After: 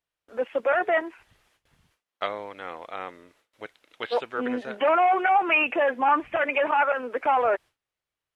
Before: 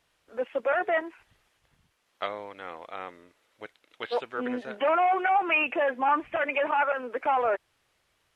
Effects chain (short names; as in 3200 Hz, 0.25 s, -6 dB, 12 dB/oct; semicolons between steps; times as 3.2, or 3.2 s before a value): gate with hold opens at -58 dBFS; gain +3 dB